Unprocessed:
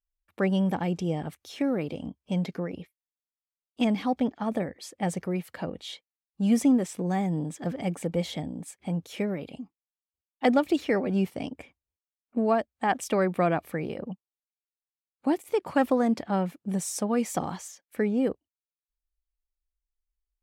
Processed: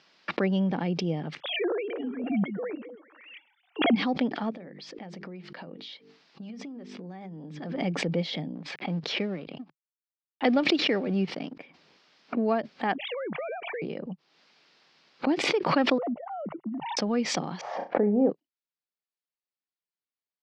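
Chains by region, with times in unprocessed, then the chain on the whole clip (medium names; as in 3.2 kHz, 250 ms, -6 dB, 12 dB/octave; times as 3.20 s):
1.40–3.96 s: formants replaced by sine waves + repeats whose band climbs or falls 130 ms, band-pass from 200 Hz, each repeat 1.4 oct, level -9.5 dB
4.50–7.81 s: hum notches 50/100/150/200/250/300/350/400/450 Hz + compression 16:1, threshold -37 dBFS
8.55–11.54 s: companding laws mixed up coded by A + level-controlled noise filter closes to 2.9 kHz, open at -24.5 dBFS
12.95–13.82 s: formants replaced by sine waves + compression, threshold -29 dBFS
15.98–16.97 s: formants replaced by sine waves + Savitzky-Golay filter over 65 samples + compression 3:1, threshold -30 dBFS
17.61–18.30 s: resonant low-pass 770 Hz, resonance Q 3 + flutter echo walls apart 5.8 m, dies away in 0.23 s
whole clip: Chebyshev band-pass 150–5000 Hz, order 4; dynamic bell 930 Hz, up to -3 dB, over -42 dBFS, Q 0.94; swell ahead of each attack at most 46 dB/s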